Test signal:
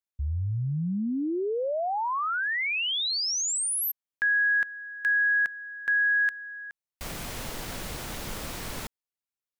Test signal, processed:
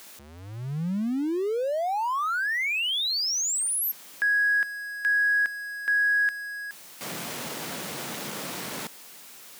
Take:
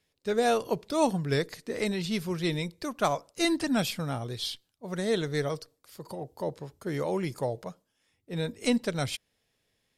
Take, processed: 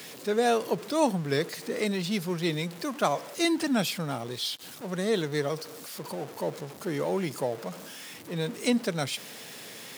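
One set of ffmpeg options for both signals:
ffmpeg -i in.wav -af "aeval=exprs='val(0)+0.5*0.0141*sgn(val(0))':channel_layout=same,highpass=frequency=150:width=0.5412,highpass=frequency=150:width=1.3066" out.wav

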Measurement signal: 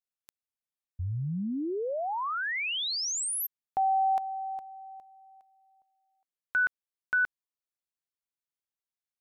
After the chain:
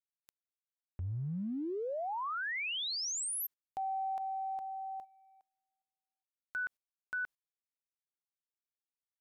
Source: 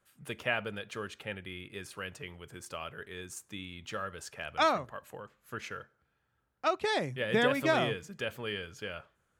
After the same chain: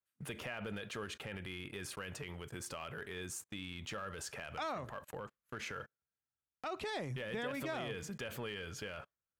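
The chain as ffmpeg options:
ffmpeg -i in.wav -af "agate=range=-30dB:threshold=-54dB:ratio=16:release=59:detection=rms,acompressor=threshold=-42dB:ratio=5:attack=0.1:release=58:knee=6:detection=peak,volume=5.5dB" out.wav

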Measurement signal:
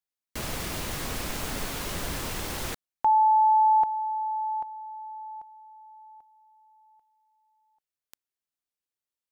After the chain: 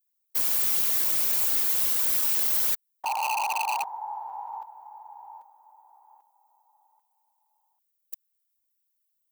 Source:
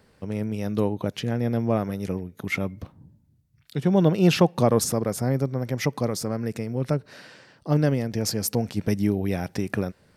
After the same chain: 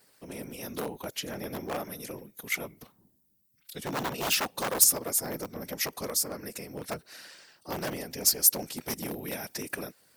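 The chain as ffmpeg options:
ffmpeg -i in.wav -af "afftfilt=real='hypot(re,im)*cos(2*PI*random(0))':imag='hypot(re,im)*sin(2*PI*random(1))':win_size=512:overlap=0.75,aeval=exprs='0.075*(abs(mod(val(0)/0.075+3,4)-2)-1)':channel_layout=same,aemphasis=mode=production:type=riaa" out.wav

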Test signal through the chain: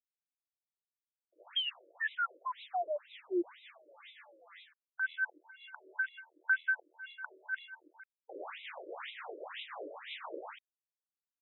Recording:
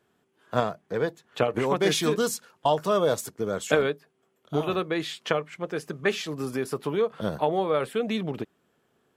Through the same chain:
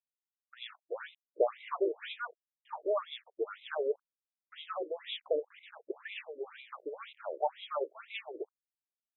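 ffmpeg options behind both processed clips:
ffmpeg -i in.wav -filter_complex "[0:a]aresample=8000,acrusher=bits=6:mix=0:aa=0.000001,aresample=44100,acrossover=split=730[link_01][link_02];[link_01]aeval=exprs='val(0)*(1-0.7/2+0.7/2*cos(2*PI*5.6*n/s))':channel_layout=same[link_03];[link_02]aeval=exprs='val(0)*(1-0.7/2-0.7/2*cos(2*PI*5.6*n/s))':channel_layout=same[link_04];[link_03][link_04]amix=inputs=2:normalize=0,acrossover=split=1900[link_05][link_06];[link_06]adelay=40[link_07];[link_05][link_07]amix=inputs=2:normalize=0,afftfilt=real='re*between(b*sr/1024,420*pow(2900/420,0.5+0.5*sin(2*PI*2*pts/sr))/1.41,420*pow(2900/420,0.5+0.5*sin(2*PI*2*pts/sr))*1.41)':imag='im*between(b*sr/1024,420*pow(2900/420,0.5+0.5*sin(2*PI*2*pts/sr))/1.41,420*pow(2900/420,0.5+0.5*sin(2*PI*2*pts/sr))*1.41)':win_size=1024:overlap=0.75" out.wav

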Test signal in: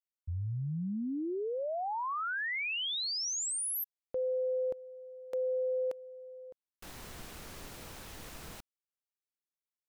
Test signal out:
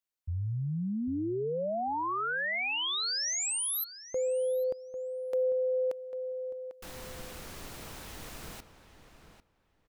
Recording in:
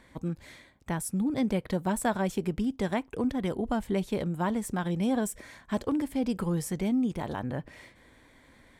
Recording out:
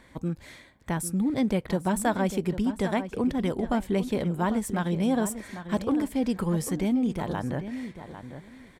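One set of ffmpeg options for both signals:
ffmpeg -i in.wav -filter_complex "[0:a]acontrast=39,asplit=2[link_01][link_02];[link_02]adelay=797,lowpass=frequency=3500:poles=1,volume=-11dB,asplit=2[link_03][link_04];[link_04]adelay=797,lowpass=frequency=3500:poles=1,volume=0.17[link_05];[link_01][link_03][link_05]amix=inputs=3:normalize=0,volume=-3dB" out.wav

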